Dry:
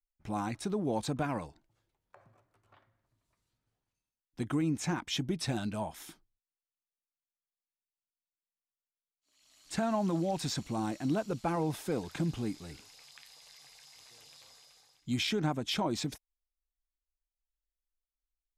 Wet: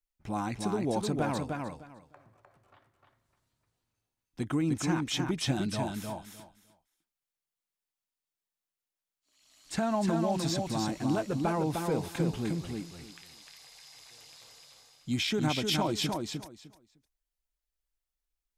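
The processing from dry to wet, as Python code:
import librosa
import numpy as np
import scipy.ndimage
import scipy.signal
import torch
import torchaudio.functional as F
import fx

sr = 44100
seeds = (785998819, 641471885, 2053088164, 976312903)

y = fx.high_shelf(x, sr, hz=6300.0, db=9.0, at=(15.34, 15.76))
y = fx.echo_feedback(y, sr, ms=304, feedback_pct=18, wet_db=-4)
y = y * 10.0 ** (1.5 / 20.0)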